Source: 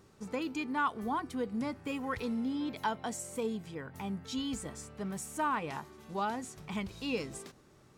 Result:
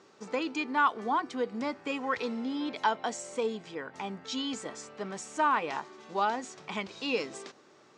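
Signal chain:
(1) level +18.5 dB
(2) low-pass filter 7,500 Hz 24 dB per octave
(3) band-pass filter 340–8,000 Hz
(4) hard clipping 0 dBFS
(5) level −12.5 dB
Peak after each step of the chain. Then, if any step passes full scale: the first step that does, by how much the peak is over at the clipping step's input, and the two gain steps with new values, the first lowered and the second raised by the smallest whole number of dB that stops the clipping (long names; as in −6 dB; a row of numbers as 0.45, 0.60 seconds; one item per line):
−2.0, −2.0, −2.0, −2.0, −14.5 dBFS
no step passes full scale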